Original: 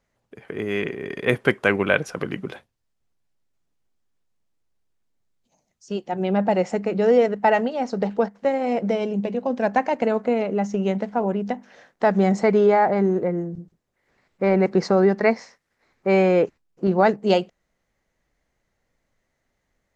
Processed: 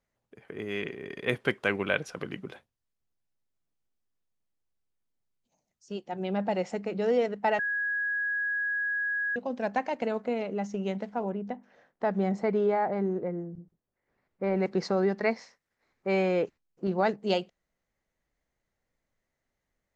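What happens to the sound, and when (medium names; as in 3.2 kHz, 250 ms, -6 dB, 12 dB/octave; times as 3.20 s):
7.59–9.36 s: bleep 1.66 kHz -19 dBFS
11.29–14.56 s: treble shelf 2.7 kHz -11.5 dB
whole clip: dynamic bell 3.7 kHz, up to +5 dB, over -42 dBFS, Q 0.98; trim -9 dB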